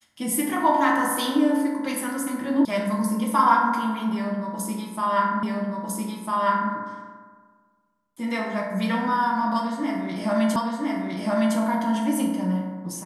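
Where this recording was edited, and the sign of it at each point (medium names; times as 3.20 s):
2.65 s: sound stops dead
5.43 s: repeat of the last 1.3 s
10.56 s: repeat of the last 1.01 s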